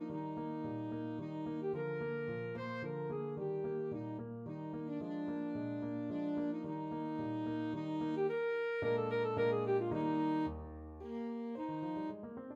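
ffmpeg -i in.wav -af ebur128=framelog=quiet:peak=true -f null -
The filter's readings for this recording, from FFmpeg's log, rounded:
Integrated loudness:
  I:         -39.1 LUFS
  Threshold: -49.2 LUFS
Loudness range:
  LRA:         5.2 LU
  Threshold: -58.8 LUFS
  LRA low:   -41.3 LUFS
  LRA high:  -36.1 LUFS
True peak:
  Peak:      -24.3 dBFS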